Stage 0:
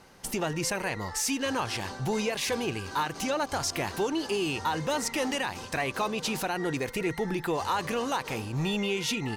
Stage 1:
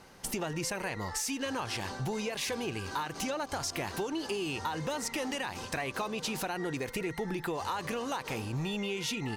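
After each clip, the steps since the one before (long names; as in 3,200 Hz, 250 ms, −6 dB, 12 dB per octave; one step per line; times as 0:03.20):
downward compressor, threshold −31 dBFS, peak gain reduction 7.5 dB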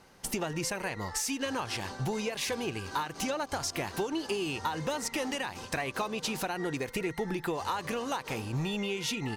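expander for the loud parts 1.5 to 1, over −43 dBFS
level +3 dB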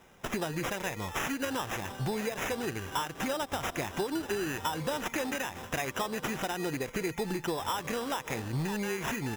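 decimation without filtering 10×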